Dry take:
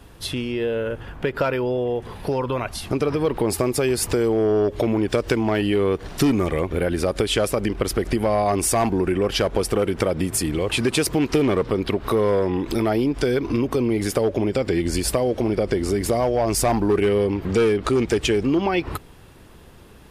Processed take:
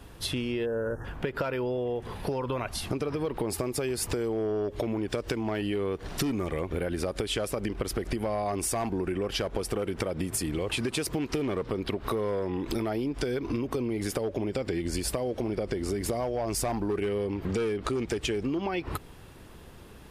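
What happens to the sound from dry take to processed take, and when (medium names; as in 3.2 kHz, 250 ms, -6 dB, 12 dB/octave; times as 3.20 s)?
0.66–1.05 s: time-frequency box 1.9–5.2 kHz -28 dB
whole clip: compression, threshold -25 dBFS; trim -2 dB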